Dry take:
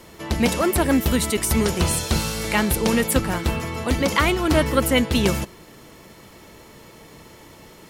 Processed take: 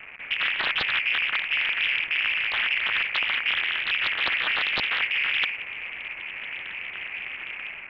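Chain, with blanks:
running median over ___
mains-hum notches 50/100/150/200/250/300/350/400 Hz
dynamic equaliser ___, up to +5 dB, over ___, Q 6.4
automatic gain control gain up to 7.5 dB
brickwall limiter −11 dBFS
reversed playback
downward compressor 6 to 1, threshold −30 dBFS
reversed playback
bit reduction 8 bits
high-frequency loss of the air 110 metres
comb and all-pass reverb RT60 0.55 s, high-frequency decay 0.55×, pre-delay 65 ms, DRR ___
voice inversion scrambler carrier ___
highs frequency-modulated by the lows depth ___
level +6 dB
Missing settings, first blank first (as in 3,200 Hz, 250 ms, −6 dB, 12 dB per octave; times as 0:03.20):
41 samples, 880 Hz, −49 dBFS, 17.5 dB, 2,600 Hz, 0.92 ms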